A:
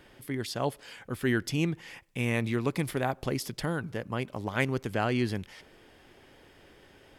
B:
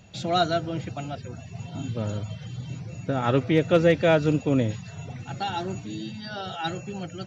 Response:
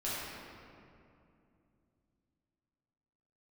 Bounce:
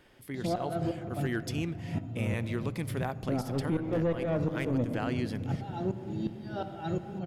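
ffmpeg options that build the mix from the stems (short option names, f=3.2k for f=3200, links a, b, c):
-filter_complex "[0:a]volume=17.5dB,asoftclip=hard,volume=-17.5dB,volume=-5dB,asplit=2[a][b];[b]volume=-23.5dB[c];[1:a]tiltshelf=f=1.1k:g=8.5,acontrast=86,aeval=exprs='val(0)*pow(10,-24*if(lt(mod(-2.8*n/s,1),2*abs(-2.8)/1000),1-mod(-2.8*n/s,1)/(2*abs(-2.8)/1000),(mod(-2.8*n/s,1)-2*abs(-2.8)/1000)/(1-2*abs(-2.8)/1000))/20)':c=same,adelay=200,volume=-10dB,asplit=2[d][e];[e]volume=-12dB[f];[2:a]atrim=start_sample=2205[g];[c][f]amix=inputs=2:normalize=0[h];[h][g]afir=irnorm=-1:irlink=0[i];[a][d][i]amix=inputs=3:normalize=0,alimiter=limit=-21.5dB:level=0:latency=1:release=123"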